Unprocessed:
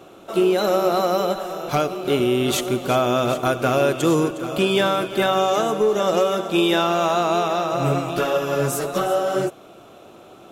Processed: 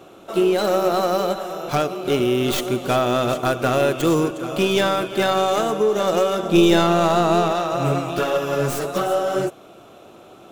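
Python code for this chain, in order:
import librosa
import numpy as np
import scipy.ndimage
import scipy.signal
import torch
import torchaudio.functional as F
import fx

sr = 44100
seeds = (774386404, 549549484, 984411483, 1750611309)

y = fx.tracing_dist(x, sr, depth_ms=0.1)
y = fx.low_shelf(y, sr, hz=340.0, db=10.0, at=(6.43, 7.52))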